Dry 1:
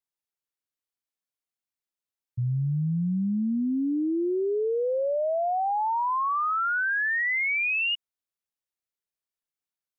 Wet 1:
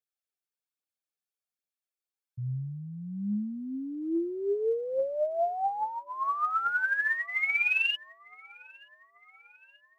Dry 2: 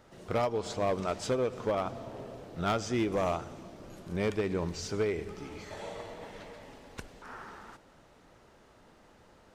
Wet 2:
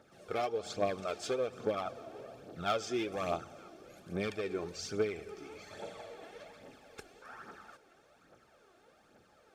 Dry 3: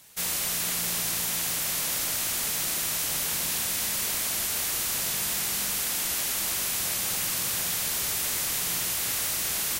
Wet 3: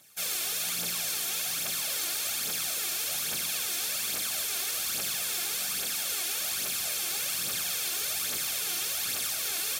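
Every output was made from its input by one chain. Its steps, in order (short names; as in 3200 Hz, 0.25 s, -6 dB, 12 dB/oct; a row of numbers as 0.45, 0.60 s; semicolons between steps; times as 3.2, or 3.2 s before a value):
low shelf 190 Hz -8.5 dB; notch comb 980 Hz; on a send: band-limited delay 0.925 s, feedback 50%, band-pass 1400 Hz, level -22 dB; on the sum: dynamic EQ 3700 Hz, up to +4 dB, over -45 dBFS, Q 1.1; phaser 1.2 Hz, delay 3 ms, feedback 52%; gain -4 dB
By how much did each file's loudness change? -3.5, -4.0, -3.0 LU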